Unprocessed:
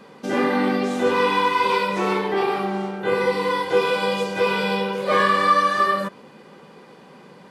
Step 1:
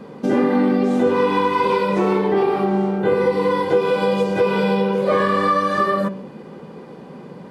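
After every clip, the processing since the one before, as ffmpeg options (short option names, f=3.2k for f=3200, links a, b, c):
-af "tiltshelf=f=830:g=7,bandreject=f=192.7:t=h:w=4,bandreject=f=385.4:t=h:w=4,bandreject=f=578.1:t=h:w=4,bandreject=f=770.8:t=h:w=4,bandreject=f=963.5:t=h:w=4,bandreject=f=1.1562k:t=h:w=4,bandreject=f=1.3489k:t=h:w=4,bandreject=f=1.5416k:t=h:w=4,bandreject=f=1.7343k:t=h:w=4,bandreject=f=1.927k:t=h:w=4,bandreject=f=2.1197k:t=h:w=4,bandreject=f=2.3124k:t=h:w=4,bandreject=f=2.5051k:t=h:w=4,bandreject=f=2.6978k:t=h:w=4,bandreject=f=2.8905k:t=h:w=4,bandreject=f=3.0832k:t=h:w=4,bandreject=f=3.2759k:t=h:w=4,bandreject=f=3.4686k:t=h:w=4,bandreject=f=3.6613k:t=h:w=4,bandreject=f=3.854k:t=h:w=4,bandreject=f=4.0467k:t=h:w=4,bandreject=f=4.2394k:t=h:w=4,bandreject=f=4.4321k:t=h:w=4,bandreject=f=4.6248k:t=h:w=4,bandreject=f=4.8175k:t=h:w=4,bandreject=f=5.0102k:t=h:w=4,bandreject=f=5.2029k:t=h:w=4,bandreject=f=5.3956k:t=h:w=4,bandreject=f=5.5883k:t=h:w=4,bandreject=f=5.781k:t=h:w=4,bandreject=f=5.9737k:t=h:w=4,bandreject=f=6.1664k:t=h:w=4,bandreject=f=6.3591k:t=h:w=4,bandreject=f=6.5518k:t=h:w=4,bandreject=f=6.7445k:t=h:w=4,bandreject=f=6.9372k:t=h:w=4,bandreject=f=7.1299k:t=h:w=4,bandreject=f=7.3226k:t=h:w=4,acompressor=threshold=-20dB:ratio=3,volume=5dB"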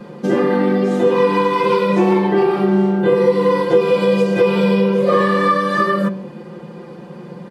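-af "aecho=1:1:5.7:0.96"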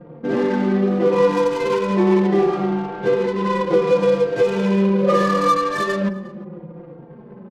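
-filter_complex "[0:a]adynamicsmooth=sensitivity=1.5:basefreq=550,asplit=2[a][b];[b]adelay=355.7,volume=-20dB,highshelf=f=4k:g=-8[c];[a][c]amix=inputs=2:normalize=0,asplit=2[d][e];[e]adelay=3.8,afreqshift=-0.73[f];[d][f]amix=inputs=2:normalize=1"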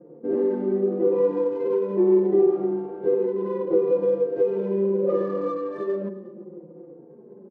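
-af "bandpass=f=380:t=q:w=2.7:csg=0"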